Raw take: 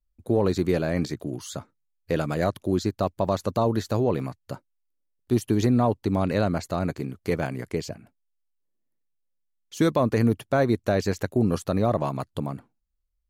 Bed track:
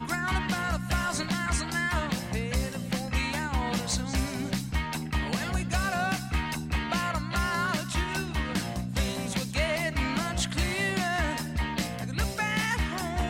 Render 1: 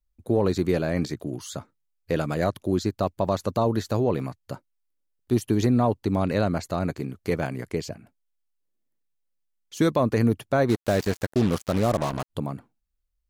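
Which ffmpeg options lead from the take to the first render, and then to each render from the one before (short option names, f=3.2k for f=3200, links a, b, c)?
-filter_complex "[0:a]asplit=3[a][b][c];[a]afade=t=out:st=10.68:d=0.02[d];[b]acrusher=bits=4:mix=0:aa=0.5,afade=t=in:st=10.68:d=0.02,afade=t=out:st=12.29:d=0.02[e];[c]afade=t=in:st=12.29:d=0.02[f];[d][e][f]amix=inputs=3:normalize=0"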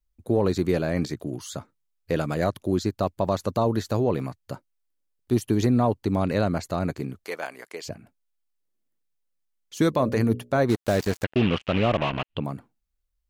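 -filter_complex "[0:a]asettb=1/sr,asplit=3[a][b][c];[a]atrim=end=7.244[d];[b]atrim=start=7.24:end=7.85,asetpts=PTS-STARTPTS,afade=t=in:d=0.004:c=qsin,afade=t=out:st=0.606:d=0.004:c=qsin,highpass=660[e];[c]atrim=start=7.846[f];[d][e]acrossfade=d=0.004:c1=hsin:c2=qsin[g];[g][f]acrossfade=d=0.004:c1=qsin:c2=hsin,asplit=3[h][i][j];[h]afade=t=out:st=9.93:d=0.02[k];[i]bandreject=f=60:t=h:w=6,bandreject=f=120:t=h:w=6,bandreject=f=180:t=h:w=6,bandreject=f=240:t=h:w=6,bandreject=f=300:t=h:w=6,bandreject=f=360:t=h:w=6,bandreject=f=420:t=h:w=6,bandreject=f=480:t=h:w=6,bandreject=f=540:t=h:w=6,bandreject=f=600:t=h:w=6,afade=t=in:st=9.93:d=0.02,afade=t=out:st=10.57:d=0.02[l];[j]afade=t=in:st=10.57:d=0.02[m];[k][l][m]amix=inputs=3:normalize=0,asettb=1/sr,asplit=3[n][o][p];[n]atrim=end=11.244[q];[o]atrim=start=11.24:end=12.44,asetpts=PTS-STARTPTS,afade=t=in:d=0.004:c=qsin,afade=t=out:st=1.196:d=0.004:c=qsin,lowpass=f=2.8k:t=q:w=5[r];[p]atrim=start=12.436[s];[q][r]acrossfade=d=0.004:c1=hsin:c2=qsin[t];[t][s]acrossfade=d=0.004:c1=qsin:c2=hsin"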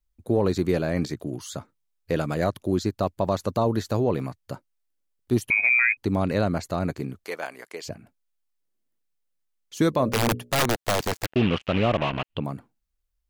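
-filter_complex "[0:a]asettb=1/sr,asplit=3[a][b][c];[a]atrim=end=5.504[d];[b]atrim=start=5.5:end=5.97,asetpts=PTS-STARTPTS,afade=t=in:d=0.004:c=qsin,afade=t=out:st=0.466:d=0.004:c=qsin,lowpass=f=2.2k:t=q:w=0.5098,lowpass=f=2.2k:t=q:w=0.6013,lowpass=f=2.2k:t=q:w=0.9,lowpass=f=2.2k:t=q:w=2.563,afreqshift=-2600[e];[c]atrim=start=5.966[f];[d][e]acrossfade=d=0.004:c1=hsin:c2=qsin[g];[g][f]acrossfade=d=0.004:c1=qsin:c2=hsin,asettb=1/sr,asplit=3[h][i][j];[h]atrim=end=10.124[k];[i]atrim=start=10.12:end=11.3,asetpts=PTS-STARTPTS,afade=t=in:d=0.004:c=qsin,afade=t=out:st=1.176:d=0.004:c=qsin,aeval=exprs='(mod(6.31*val(0)+1,2)-1)/6.31':c=same[l];[j]atrim=start=11.296[m];[k][l]acrossfade=d=0.004:c1=hsin:c2=qsin[n];[n][m]acrossfade=d=0.004:c1=qsin:c2=hsin"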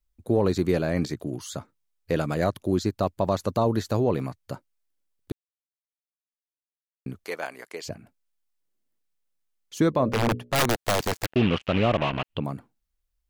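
-filter_complex "[0:a]asettb=1/sr,asplit=3[a][b][c];[a]atrim=end=9.804[d];[b]atrim=start=9.8:end=10.55,asetpts=PTS-STARTPTS,afade=t=in:d=0.004:c=qsin,afade=t=out:st=0.746:d=0.004:c=qsin,lowpass=f=2.6k:p=1[e];[c]atrim=start=10.546[f];[d][e]acrossfade=d=0.004:c1=hsin:c2=qsin[g];[g][f]acrossfade=d=0.004:c1=qsin:c2=hsin,asplit=3[h][i][j];[h]atrim=end=5.32,asetpts=PTS-STARTPTS,afade=t=out:st=5.316:d=0.004:c=hsin[k];[i]atrim=start=5.32:end=7.06,asetpts=PTS-STARTPTS,volume=0[l];[j]atrim=start=7.06,asetpts=PTS-STARTPTS,afade=t=in:d=0.004:c=hsin[m];[k][l][m]concat=n=3:v=0:a=1"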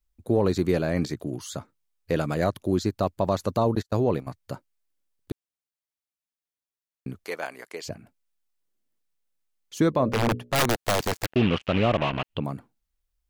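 -filter_complex "[0:a]asettb=1/sr,asplit=3[a][b][c];[a]atrim=end=3.754[d];[b]atrim=start=3.75:end=4.27,asetpts=PTS-STARTPTS,afade=t=in:d=0.004:c=qsin,afade=t=out:st=0.516:d=0.004:c=qsin,agate=range=-31dB:threshold=-28dB:ratio=16:release=100:detection=peak[e];[c]atrim=start=4.266[f];[d][e]acrossfade=d=0.004:c1=hsin:c2=qsin[g];[g][f]acrossfade=d=0.004:c1=qsin:c2=hsin"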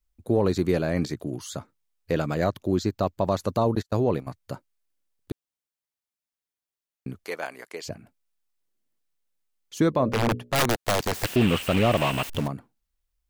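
-filter_complex "[0:a]asettb=1/sr,asplit=3[a][b][c];[a]atrim=end=2.124[d];[b]atrim=start=2.12:end=3.26,asetpts=PTS-STARTPTS,afade=t=in:d=0.004:c=qsin,afade=t=out:st=1.136:d=0.004:c=qsin,equalizer=f=10k:w=4.8:g=-12.5[e];[c]atrim=start=3.256[f];[d][e]acrossfade=d=0.004:c1=hsin:c2=qsin[g];[g][f]acrossfade=d=0.004:c1=qsin:c2=hsin,asettb=1/sr,asplit=3[h][i][j];[h]atrim=end=11.144[k];[i]atrim=start=11.14:end=12.48,asetpts=PTS-STARTPTS,afade=t=in:d=0.004:c=qsin,afade=t=out:st=1.336:d=0.004:c=qsin,aeval=exprs='val(0)+0.5*0.0335*sgn(val(0))':c=same[l];[j]atrim=start=12.476[m];[k][l]acrossfade=d=0.004:c1=hsin:c2=qsin[n];[n][m]acrossfade=d=0.004:c1=qsin:c2=hsin"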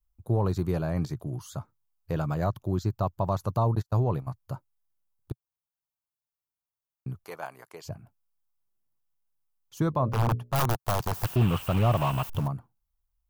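-af "equalizer=f=125:t=o:w=1:g=6,equalizer=f=250:t=o:w=1:g=-9,equalizer=f=500:t=o:w=1:g=-7,equalizer=f=1k:t=o:w=1:g=4,equalizer=f=2k:t=o:w=1:g=-11,equalizer=f=4k:t=o:w=1:g=-7,equalizer=f=8k:t=o:w=1:g=-7"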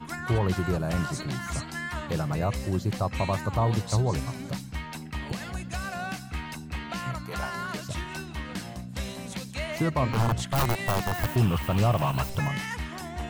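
-filter_complex "[1:a]volume=-5.5dB[a];[0:a][a]amix=inputs=2:normalize=0"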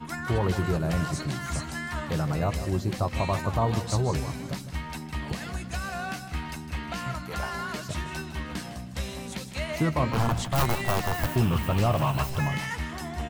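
-filter_complex "[0:a]asplit=2[a][b];[b]adelay=13,volume=-11dB[c];[a][c]amix=inputs=2:normalize=0,aecho=1:1:156|312|468:0.251|0.0703|0.0197"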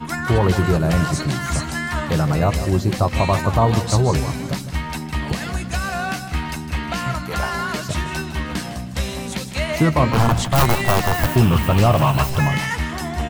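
-af "volume=9dB,alimiter=limit=-3dB:level=0:latency=1"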